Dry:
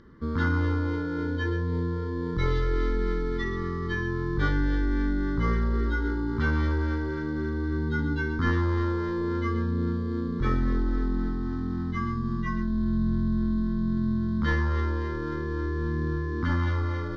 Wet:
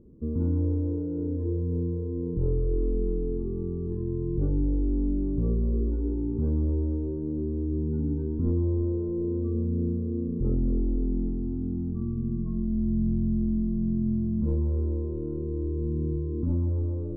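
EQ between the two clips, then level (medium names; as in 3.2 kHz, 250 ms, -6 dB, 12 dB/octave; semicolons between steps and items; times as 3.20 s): inverse Chebyshev low-pass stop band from 1.9 kHz, stop band 60 dB; 0.0 dB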